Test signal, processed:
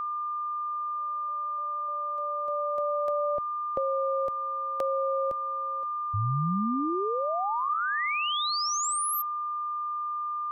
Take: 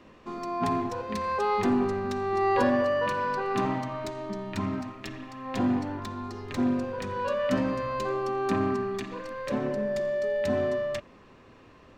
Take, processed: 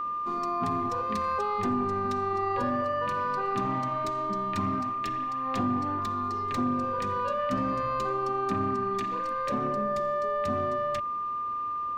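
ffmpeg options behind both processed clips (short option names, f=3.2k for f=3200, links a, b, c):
-filter_complex "[0:a]acrossover=split=180[a][b];[b]acompressor=threshold=-29dB:ratio=6[c];[a][c]amix=inputs=2:normalize=0,aeval=exprs='val(0)+0.0355*sin(2*PI*1200*n/s)':c=same"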